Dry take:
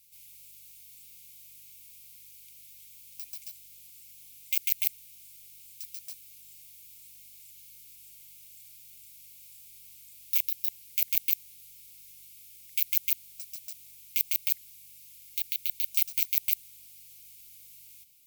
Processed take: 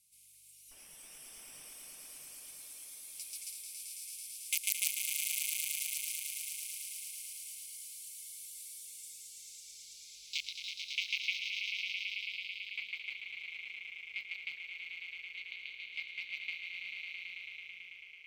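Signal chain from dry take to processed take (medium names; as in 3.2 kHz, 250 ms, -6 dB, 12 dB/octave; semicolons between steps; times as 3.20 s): 0.71–1.69 s: comb filter that takes the minimum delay 0.36 ms; low-pass sweep 10 kHz -> 1.8 kHz, 8.67–11.96 s; echo with a slow build-up 110 ms, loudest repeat 5, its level -6.5 dB; spectral noise reduction 9 dB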